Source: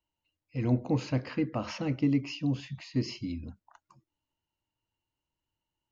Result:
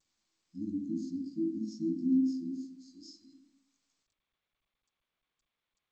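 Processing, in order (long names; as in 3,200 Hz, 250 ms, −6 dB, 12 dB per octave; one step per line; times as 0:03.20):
every overlapping window played backwards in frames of 37 ms
drawn EQ curve 180 Hz 0 dB, 440 Hz +6 dB, 700 Hz −19 dB, 1,300 Hz +8 dB, 2,500 Hz −9 dB, 5,300 Hz −2 dB
brickwall limiter −25 dBFS, peak gain reduction 6.5 dB
harmonic and percussive parts rebalanced percussive −4 dB
high-pass filter sweep 240 Hz → 2,000 Hz, 0:02.19–0:04.20
linear-phase brick-wall band-stop 350–4,000 Hz
convolution reverb RT60 0.65 s, pre-delay 3 ms, DRR 2.5 dB
level −2.5 dB
G.722 64 kbit/s 16,000 Hz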